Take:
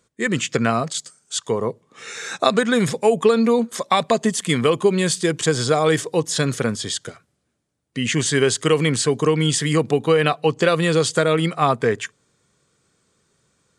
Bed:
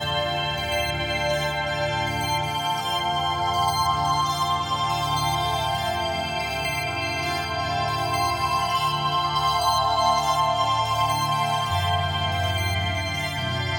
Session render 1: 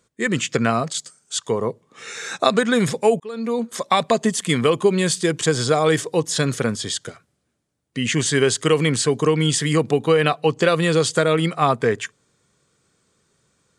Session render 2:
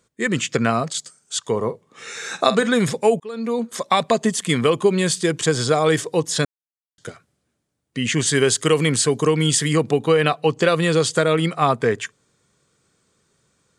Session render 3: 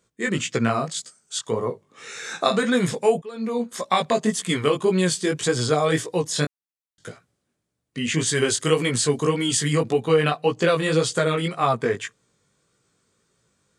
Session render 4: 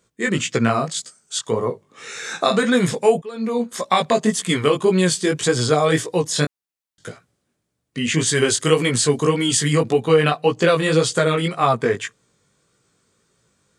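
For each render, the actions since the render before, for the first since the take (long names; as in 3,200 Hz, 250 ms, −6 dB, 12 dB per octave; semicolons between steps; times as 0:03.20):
0:03.20–0:03.83: fade in
0:01.50–0:02.70: double-tracking delay 47 ms −13.5 dB; 0:06.45–0:06.98: silence; 0:08.27–0:09.68: high-shelf EQ 9,200 Hz +9 dB
chorus effect 1.8 Hz, delay 16 ms, depth 4.9 ms
level +3.5 dB; brickwall limiter −2 dBFS, peak gain reduction 2 dB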